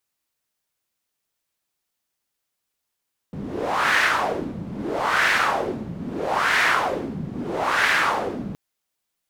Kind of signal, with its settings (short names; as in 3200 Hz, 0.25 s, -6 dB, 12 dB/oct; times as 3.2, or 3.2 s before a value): wind-like swept noise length 5.22 s, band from 180 Hz, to 1800 Hz, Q 2.6, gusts 4, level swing 13 dB